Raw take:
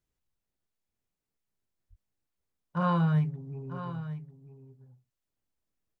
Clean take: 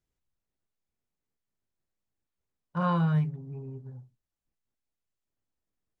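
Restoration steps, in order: 1.89–2.01 HPF 140 Hz 24 dB/oct; inverse comb 0.946 s -12 dB

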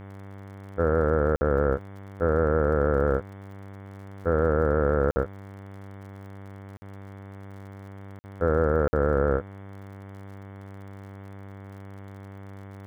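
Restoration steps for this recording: de-click; de-hum 98.2 Hz, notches 23; interpolate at 1.36/5.11/6.77/8.19/8.88, 50 ms; noise print and reduce 29 dB

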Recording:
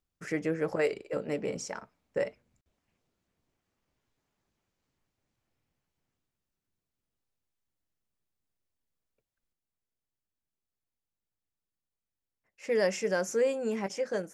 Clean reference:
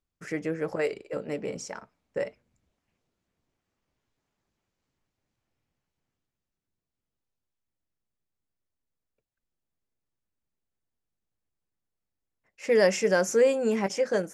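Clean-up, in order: interpolate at 2.61, 50 ms; gain 0 dB, from 9.53 s +6 dB

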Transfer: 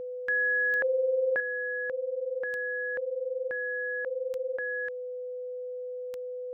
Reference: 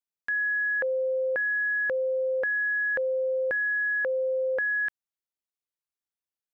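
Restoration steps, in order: de-click; notch 500 Hz, Q 30; gain correction +7.5 dB, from 1.4

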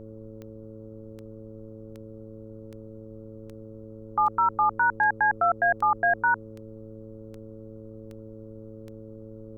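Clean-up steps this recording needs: de-click; de-hum 109.6 Hz, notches 5; denoiser 27 dB, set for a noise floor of -43 dBFS

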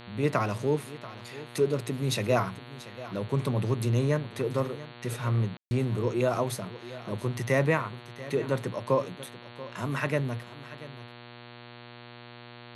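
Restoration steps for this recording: de-hum 120 Hz, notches 37; room tone fill 5.57–5.71; inverse comb 0.685 s -16.5 dB

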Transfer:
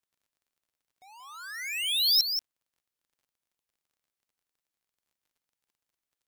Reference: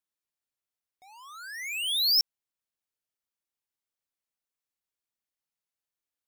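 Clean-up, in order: de-click; inverse comb 0.181 s -7.5 dB

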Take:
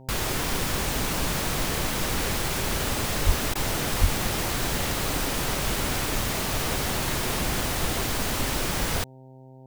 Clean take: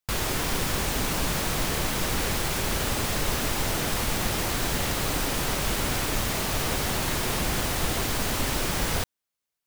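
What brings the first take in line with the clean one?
de-hum 130.9 Hz, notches 7; 3.25–3.37 HPF 140 Hz 24 dB/oct; 4–4.12 HPF 140 Hz 24 dB/oct; interpolate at 3.54, 12 ms

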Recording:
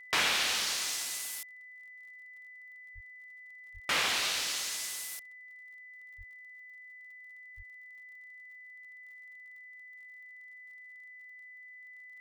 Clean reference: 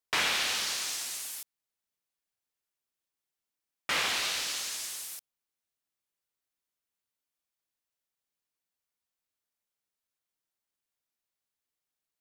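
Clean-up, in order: de-click; notch 2000 Hz, Q 30; de-plosive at 2.94/3.73/6.17/7.56

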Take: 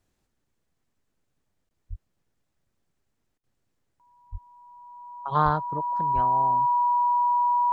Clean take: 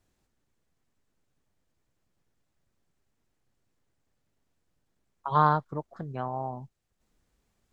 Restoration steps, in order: notch 970 Hz, Q 30; de-plosive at 1.89/4.31/5.44/6.14; interpolate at 1.69, 19 ms; interpolate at 3.38, 55 ms

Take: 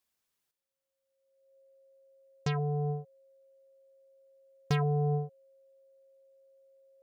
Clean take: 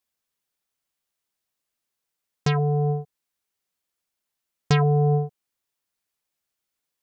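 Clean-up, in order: clip repair -21.5 dBFS; notch 540 Hz, Q 30; gain correction +9 dB, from 0.51

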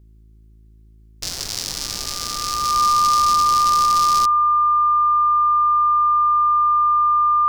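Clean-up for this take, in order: de-hum 54.1 Hz, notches 7; notch 1200 Hz, Q 30

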